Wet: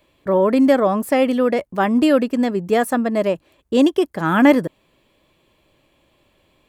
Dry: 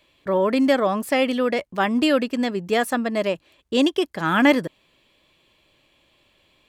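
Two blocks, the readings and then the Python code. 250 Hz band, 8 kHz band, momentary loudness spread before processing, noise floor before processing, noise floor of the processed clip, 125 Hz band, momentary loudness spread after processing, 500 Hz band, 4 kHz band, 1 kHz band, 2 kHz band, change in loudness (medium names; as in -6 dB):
+5.0 dB, +1.0 dB, 7 LU, -63 dBFS, -63 dBFS, +5.0 dB, 6 LU, +4.0 dB, -3.5 dB, +3.0 dB, -0.5 dB, +4.0 dB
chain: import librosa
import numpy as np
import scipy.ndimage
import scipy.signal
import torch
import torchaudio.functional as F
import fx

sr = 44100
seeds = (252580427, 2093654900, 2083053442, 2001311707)

y = fx.peak_eq(x, sr, hz=3600.0, db=-9.0, octaves=2.4)
y = F.gain(torch.from_numpy(y), 5.0).numpy()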